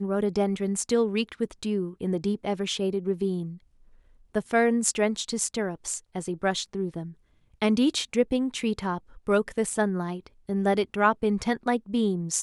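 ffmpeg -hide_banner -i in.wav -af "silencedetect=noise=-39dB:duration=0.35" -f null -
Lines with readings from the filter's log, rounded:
silence_start: 3.56
silence_end: 4.35 | silence_duration: 0.79
silence_start: 7.11
silence_end: 7.62 | silence_duration: 0.50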